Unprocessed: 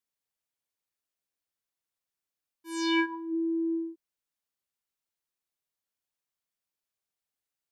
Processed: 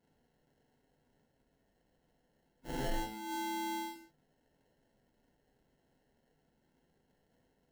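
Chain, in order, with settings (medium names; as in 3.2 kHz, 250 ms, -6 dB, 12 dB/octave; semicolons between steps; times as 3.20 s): bass shelf 350 Hz +9.5 dB; time-frequency box 1.22–4.07 s, 260–3000 Hz -25 dB; peaking EQ 220 Hz +7.5 dB 0.85 oct; in parallel at +3 dB: compression, threshold -48 dBFS, peak gain reduction 14 dB; on the sum: sample-rate reducer 1.2 kHz, jitter 0%; saturation -38.5 dBFS, distortion -9 dB; gated-style reverb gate 200 ms falling, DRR 2 dB; trim +4.5 dB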